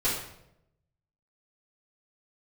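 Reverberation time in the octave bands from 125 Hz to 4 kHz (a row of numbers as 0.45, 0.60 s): 1.2, 0.95, 0.90, 0.70, 0.65, 0.60 s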